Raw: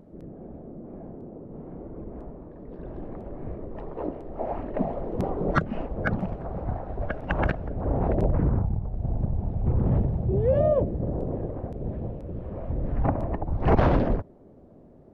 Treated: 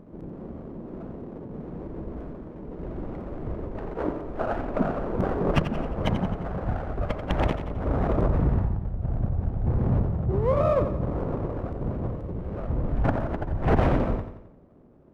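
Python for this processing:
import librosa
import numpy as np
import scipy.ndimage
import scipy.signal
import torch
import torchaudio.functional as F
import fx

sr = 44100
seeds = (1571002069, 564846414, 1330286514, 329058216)

y = fx.lower_of_two(x, sr, delay_ms=0.33)
y = fx.dynamic_eq(y, sr, hz=1100.0, q=0.98, threshold_db=-44.0, ratio=4.0, max_db=4)
y = fx.rider(y, sr, range_db=3, speed_s=2.0)
y = fx.high_shelf(y, sr, hz=2400.0, db=-8.5)
y = fx.echo_feedback(y, sr, ms=88, feedback_pct=49, wet_db=-10)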